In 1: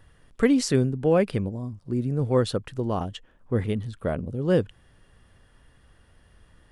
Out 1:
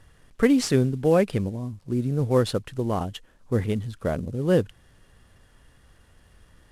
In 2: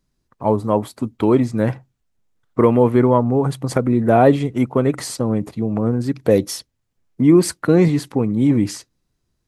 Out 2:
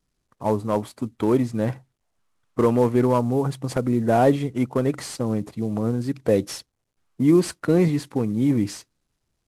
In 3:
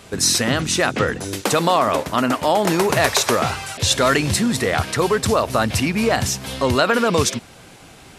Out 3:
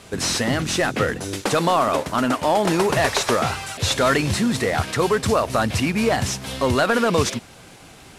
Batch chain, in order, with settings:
variable-slope delta modulation 64 kbit/s
normalise the peak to −6 dBFS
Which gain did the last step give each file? +1.0, −4.5, −1.0 decibels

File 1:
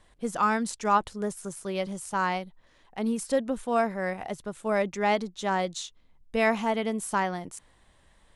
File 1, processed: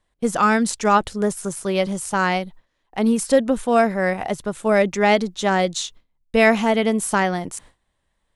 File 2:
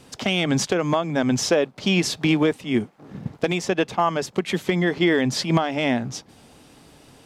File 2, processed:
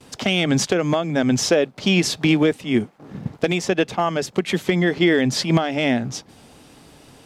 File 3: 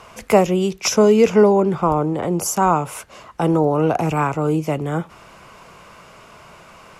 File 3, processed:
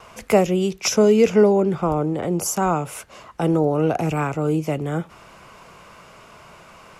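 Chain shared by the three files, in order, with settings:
noise gate with hold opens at −43 dBFS
dynamic equaliser 1,000 Hz, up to −7 dB, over −37 dBFS, Q 2.6
loudness normalisation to −20 LKFS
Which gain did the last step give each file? +10.0, +2.5, −1.5 decibels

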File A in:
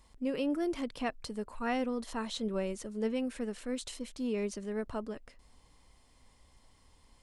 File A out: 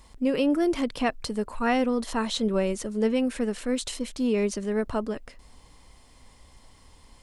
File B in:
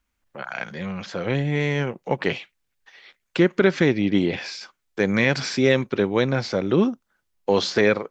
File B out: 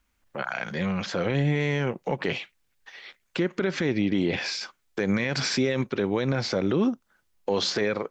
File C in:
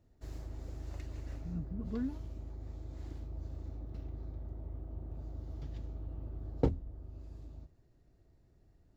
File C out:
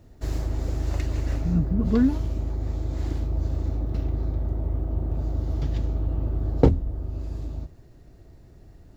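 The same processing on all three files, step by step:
in parallel at −1 dB: downward compressor, threshold −28 dBFS
on the sum: brickwall limiter −13.5 dBFS
loudness normalisation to −27 LKFS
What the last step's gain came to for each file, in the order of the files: +4.0, −1.5, +11.0 decibels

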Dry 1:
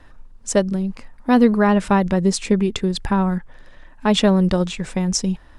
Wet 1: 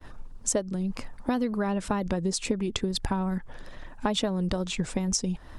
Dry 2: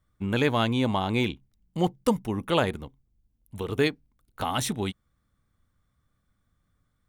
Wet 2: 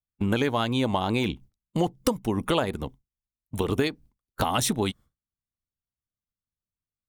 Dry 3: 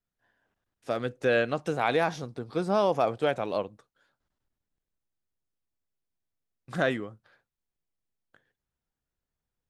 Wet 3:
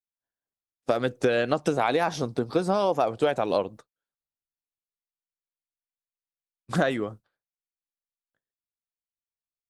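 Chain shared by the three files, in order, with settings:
downward expander −44 dBFS
harmonic and percussive parts rebalanced percussive +6 dB
parametric band 2,000 Hz −4 dB 1.4 octaves
downward compressor 6 to 1, threshold −26 dBFS
tape wow and flutter 50 cents
normalise the peak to −9 dBFS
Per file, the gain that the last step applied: +1.0, +5.0, +6.5 decibels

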